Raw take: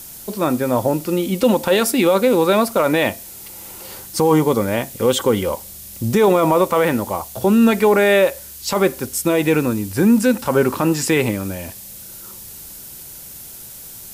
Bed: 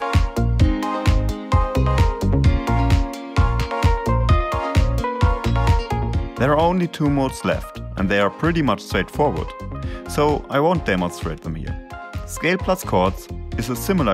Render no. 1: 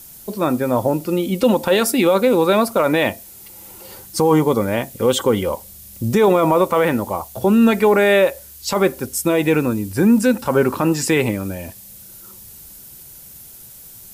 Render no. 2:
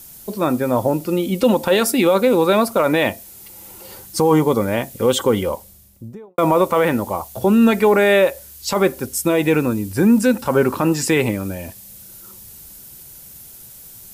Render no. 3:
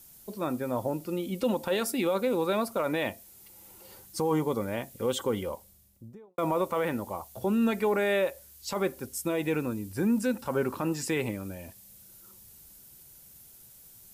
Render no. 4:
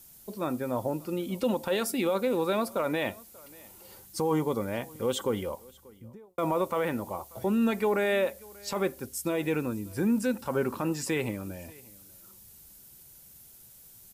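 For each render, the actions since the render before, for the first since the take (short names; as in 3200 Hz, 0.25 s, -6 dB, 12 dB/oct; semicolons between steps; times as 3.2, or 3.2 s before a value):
denoiser 6 dB, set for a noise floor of -37 dBFS
5.36–6.38 studio fade out
gain -12.5 dB
echo 0.587 s -24 dB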